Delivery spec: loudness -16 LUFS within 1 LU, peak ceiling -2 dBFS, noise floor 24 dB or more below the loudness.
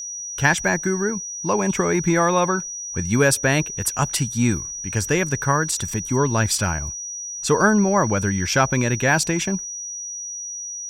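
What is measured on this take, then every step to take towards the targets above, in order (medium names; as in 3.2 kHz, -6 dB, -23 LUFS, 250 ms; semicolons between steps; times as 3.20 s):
steady tone 5.8 kHz; tone level -29 dBFS; loudness -21.0 LUFS; peak level -4.5 dBFS; loudness target -16.0 LUFS
-> band-stop 5.8 kHz, Q 30; trim +5 dB; peak limiter -2 dBFS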